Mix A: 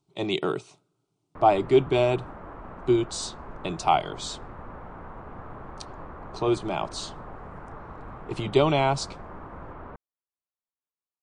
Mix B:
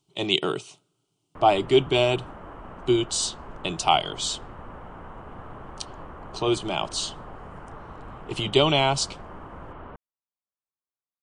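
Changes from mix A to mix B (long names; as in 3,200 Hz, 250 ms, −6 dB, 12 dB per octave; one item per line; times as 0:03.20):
speech: add high-shelf EQ 4,000 Hz +10 dB
master: add parametric band 3,000 Hz +10.5 dB 0.27 octaves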